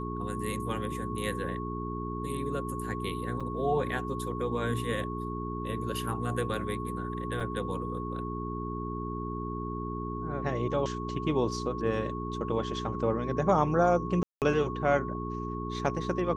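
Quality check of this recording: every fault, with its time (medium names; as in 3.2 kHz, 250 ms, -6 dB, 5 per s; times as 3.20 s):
hum 60 Hz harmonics 7 -36 dBFS
whine 1.1 kHz -38 dBFS
3.40–3.41 s: dropout 5.7 ms
7.40 s: dropout 4.3 ms
14.23–14.42 s: dropout 188 ms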